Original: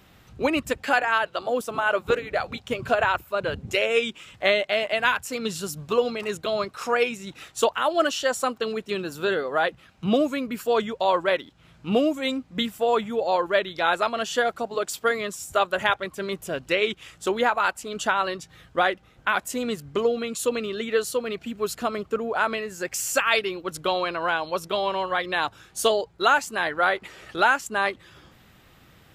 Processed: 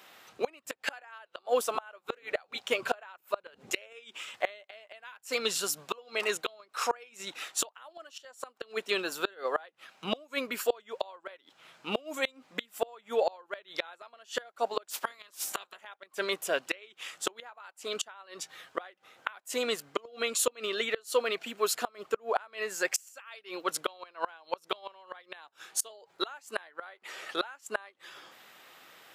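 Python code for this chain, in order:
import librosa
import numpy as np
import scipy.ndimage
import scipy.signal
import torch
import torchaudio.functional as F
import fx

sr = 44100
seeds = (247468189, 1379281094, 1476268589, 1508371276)

y = fx.spec_clip(x, sr, under_db=19, at=(14.9, 15.8), fade=0.02)
y = scipy.signal.sosfilt(scipy.signal.butter(2, 550.0, 'highpass', fs=sr, output='sos'), y)
y = fx.gate_flip(y, sr, shuts_db=-18.0, range_db=-29)
y = y * librosa.db_to_amplitude(3.0)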